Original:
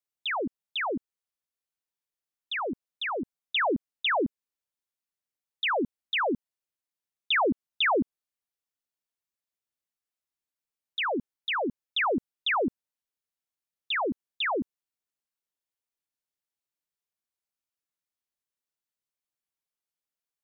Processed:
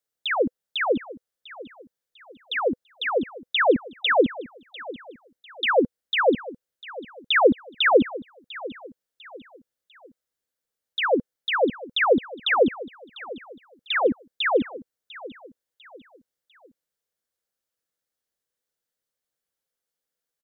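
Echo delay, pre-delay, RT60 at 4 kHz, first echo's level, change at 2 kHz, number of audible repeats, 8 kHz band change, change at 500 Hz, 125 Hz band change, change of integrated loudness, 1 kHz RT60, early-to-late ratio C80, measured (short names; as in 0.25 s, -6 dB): 0.698 s, none, none, -17.5 dB, +5.5 dB, 3, n/a, +10.5 dB, +5.0 dB, +6.0 dB, none, none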